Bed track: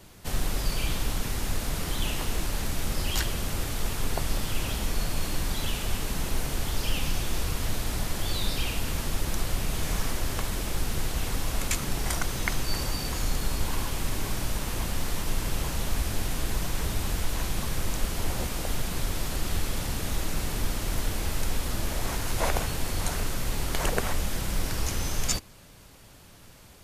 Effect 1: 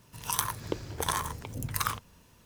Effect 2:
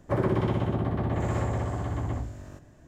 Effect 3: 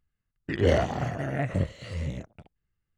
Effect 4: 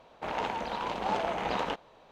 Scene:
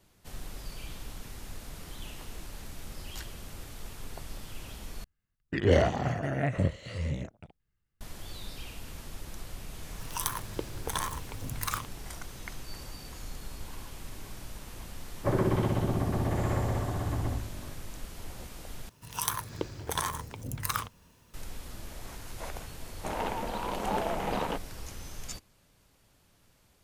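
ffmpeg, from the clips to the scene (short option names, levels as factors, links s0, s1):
-filter_complex "[1:a]asplit=2[s0][s1];[0:a]volume=0.211[s2];[4:a]lowshelf=f=500:g=8[s3];[s2]asplit=3[s4][s5][s6];[s4]atrim=end=5.044[s7];[3:a]atrim=end=2.97,asetpts=PTS-STARTPTS,volume=0.944[s8];[s5]atrim=start=8.006:end=18.894[s9];[s1]atrim=end=2.45,asetpts=PTS-STARTPTS,volume=0.841[s10];[s6]atrim=start=21.336[s11];[s0]atrim=end=2.45,asetpts=PTS-STARTPTS,volume=0.708,afade=t=in:d=0.004:c=hsin,afade=t=out:st=2.446:d=0.004:c=hsin,adelay=9870[s12];[2:a]atrim=end=2.87,asetpts=PTS-STARTPTS,volume=0.841,afade=t=in:d=0.004:c=hsin,afade=t=out:st=2.866:d=0.004:c=hsin,adelay=15150[s13];[s3]atrim=end=2.11,asetpts=PTS-STARTPTS,volume=0.668,afade=t=in:d=0.004:c=hsin,afade=t=out:st=2.106:d=0.004:c=hsin,adelay=22820[s14];[s7][s8]acrossfade=d=0.004:c1=hsin:c2=hsin[s15];[s15][s9]acrossfade=d=0.004:c1=hsin:c2=hsin[s16];[s16][s10]acrossfade=d=0.004:c1=hsin:c2=hsin[s17];[s17][s11]acrossfade=d=0.004:c1=hsin:c2=hsin[s18];[s18][s12][s13][s14]amix=inputs=4:normalize=0"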